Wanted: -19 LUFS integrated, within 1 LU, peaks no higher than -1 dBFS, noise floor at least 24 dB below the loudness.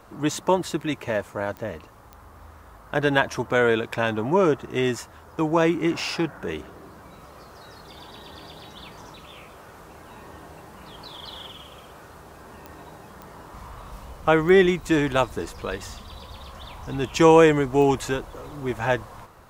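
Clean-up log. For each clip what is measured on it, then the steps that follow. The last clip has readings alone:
clicks found 6; loudness -22.5 LUFS; peak level -3.0 dBFS; loudness target -19.0 LUFS
-> de-click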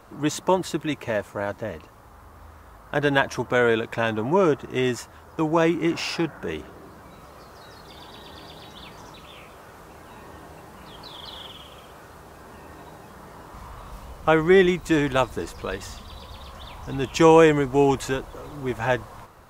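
clicks found 0; loudness -22.5 LUFS; peak level -3.0 dBFS; loudness target -19.0 LUFS
-> trim +3.5 dB; peak limiter -1 dBFS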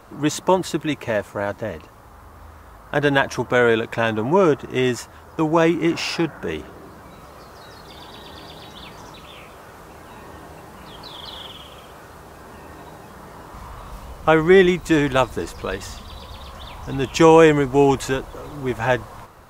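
loudness -19.5 LUFS; peak level -1.0 dBFS; noise floor -44 dBFS

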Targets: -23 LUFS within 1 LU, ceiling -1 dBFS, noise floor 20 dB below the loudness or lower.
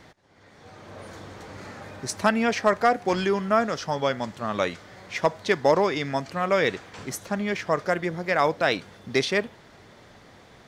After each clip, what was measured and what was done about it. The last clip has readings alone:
loudness -25.0 LUFS; peak level -9.0 dBFS; loudness target -23.0 LUFS
-> trim +2 dB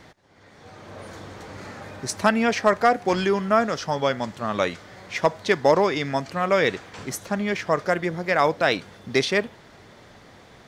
loudness -23.0 LUFS; peak level -7.0 dBFS; noise floor -50 dBFS

